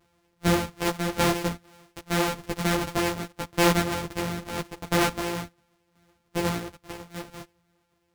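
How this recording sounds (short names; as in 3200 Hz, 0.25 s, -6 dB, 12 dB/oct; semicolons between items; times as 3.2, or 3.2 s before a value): a buzz of ramps at a fixed pitch in blocks of 256 samples; tremolo saw down 0.84 Hz, depth 60%; a shimmering, thickened sound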